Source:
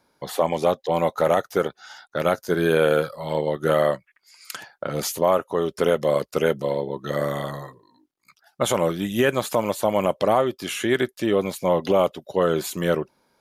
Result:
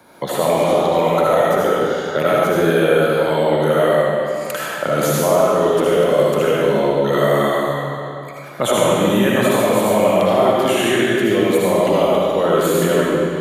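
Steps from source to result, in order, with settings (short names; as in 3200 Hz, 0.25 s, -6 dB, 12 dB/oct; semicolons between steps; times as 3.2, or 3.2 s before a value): HPF 87 Hz; bell 5100 Hz -11.5 dB 0.39 oct; in parallel at +1.5 dB: negative-ratio compressor -24 dBFS; on the sum: reverb RT60 1.8 s, pre-delay 35 ms, DRR -6 dB; three-band squash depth 40%; gain -4.5 dB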